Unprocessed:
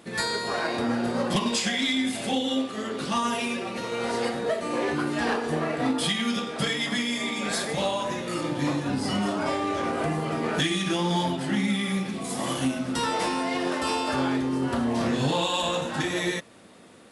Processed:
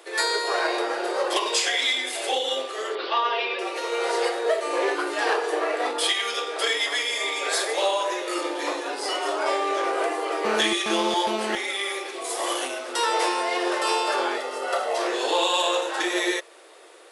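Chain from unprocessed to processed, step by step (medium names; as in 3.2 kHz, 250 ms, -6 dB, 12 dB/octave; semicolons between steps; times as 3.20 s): 2.95–3.59 s: steep low-pass 4.6 kHz 48 dB/octave; 14.36–14.98 s: comb 1.5 ms, depth 83%; steep high-pass 340 Hz 72 dB/octave; 10.45–11.55 s: mobile phone buzz -33 dBFS; trim +4 dB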